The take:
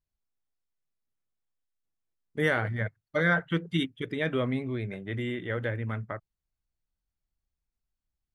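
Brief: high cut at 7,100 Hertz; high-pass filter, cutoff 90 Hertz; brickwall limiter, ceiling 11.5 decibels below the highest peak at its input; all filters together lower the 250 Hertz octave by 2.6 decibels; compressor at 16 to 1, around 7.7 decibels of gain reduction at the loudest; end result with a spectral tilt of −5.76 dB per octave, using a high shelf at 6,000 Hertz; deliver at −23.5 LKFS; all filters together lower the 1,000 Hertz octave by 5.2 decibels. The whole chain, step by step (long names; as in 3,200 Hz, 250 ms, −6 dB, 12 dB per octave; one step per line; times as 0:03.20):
high-pass filter 90 Hz
low-pass filter 7,100 Hz
parametric band 250 Hz −3 dB
parametric band 1,000 Hz −8 dB
high-shelf EQ 6,000 Hz −4 dB
downward compressor 16 to 1, threshold −30 dBFS
level +19.5 dB
brickwall limiter −13 dBFS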